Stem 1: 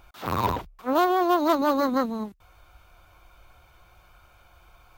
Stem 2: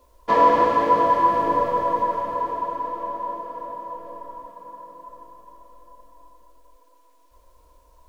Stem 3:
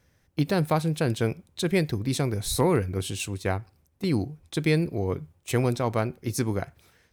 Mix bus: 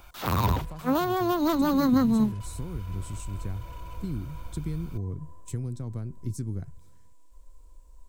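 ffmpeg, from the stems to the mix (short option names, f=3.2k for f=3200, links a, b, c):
-filter_complex "[0:a]highshelf=f=3.9k:g=7,volume=1.5dB[a];[1:a]equalizer=f=120:t=o:w=2.2:g=-13,acrossover=split=150[b][c];[c]acompressor=threshold=-27dB:ratio=6[d];[b][d]amix=inputs=2:normalize=0,asoftclip=type=hard:threshold=-33dB,volume=-8.5dB[e];[2:a]equalizer=f=2.5k:w=1.5:g=-6.5,volume=-12dB[f];[e][f]amix=inputs=2:normalize=0,equalizer=f=7.8k:t=o:w=0.49:g=11,acompressor=threshold=-41dB:ratio=6,volume=0dB[g];[a][g]amix=inputs=2:normalize=0,asubboost=boost=8.5:cutoff=230,acrossover=split=240[h][i];[i]acompressor=threshold=-24dB:ratio=6[j];[h][j]amix=inputs=2:normalize=0"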